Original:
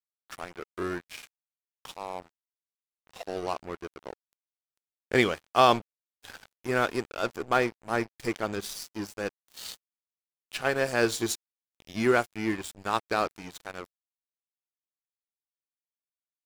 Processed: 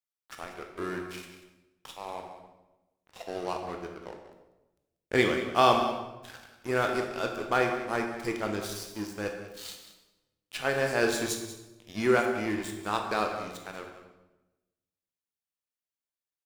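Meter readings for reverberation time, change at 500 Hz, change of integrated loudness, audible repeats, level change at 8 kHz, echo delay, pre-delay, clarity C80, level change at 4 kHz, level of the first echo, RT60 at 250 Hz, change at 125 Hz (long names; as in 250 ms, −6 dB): 1.0 s, 0.0 dB, −1.0 dB, 1, −1.0 dB, 189 ms, 16 ms, 6.5 dB, −1.0 dB, −12.5 dB, 1.2 s, −0.5 dB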